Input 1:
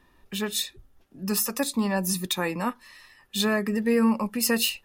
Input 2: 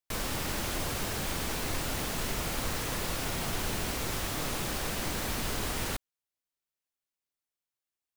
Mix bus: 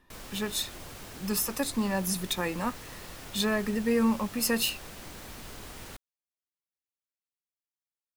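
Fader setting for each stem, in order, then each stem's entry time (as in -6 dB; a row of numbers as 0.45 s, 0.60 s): -3.5 dB, -11.0 dB; 0.00 s, 0.00 s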